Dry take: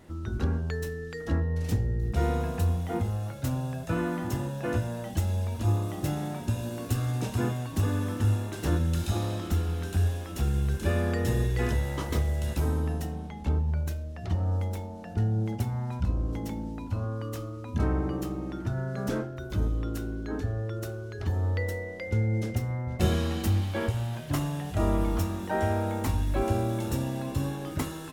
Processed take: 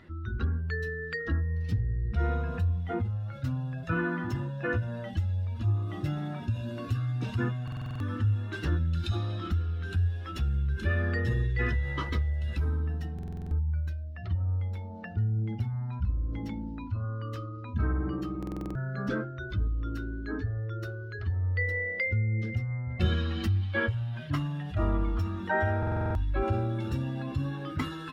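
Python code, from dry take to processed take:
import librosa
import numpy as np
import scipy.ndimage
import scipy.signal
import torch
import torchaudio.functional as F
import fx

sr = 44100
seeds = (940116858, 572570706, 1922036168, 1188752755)

y = fx.spec_expand(x, sr, power=1.6)
y = fx.band_shelf(y, sr, hz=2400.0, db=14.0, octaves=2.5)
y = fx.buffer_glitch(y, sr, at_s=(7.63, 13.14, 18.38, 25.78), block=2048, repeats=7)
y = F.gain(torch.from_numpy(y), -1.5).numpy()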